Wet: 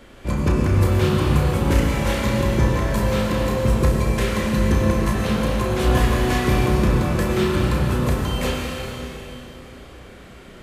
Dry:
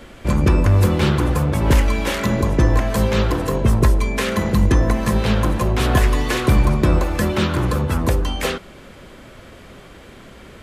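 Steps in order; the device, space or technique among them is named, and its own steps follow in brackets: tunnel (flutter echo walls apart 5.6 m, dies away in 0.32 s; reverb RT60 3.3 s, pre-delay 91 ms, DRR -0.5 dB); gain -6 dB

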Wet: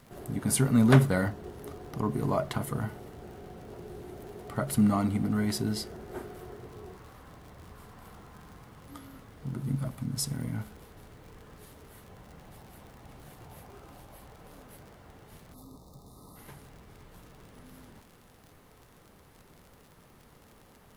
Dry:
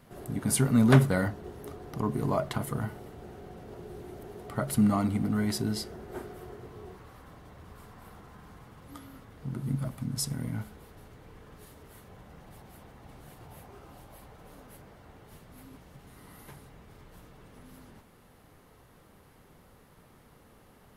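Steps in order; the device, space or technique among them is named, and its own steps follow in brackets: vinyl LP (crackle 56/s -43 dBFS; pink noise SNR 35 dB); spectral gain 15.54–16.36, 1300–3500 Hz -24 dB

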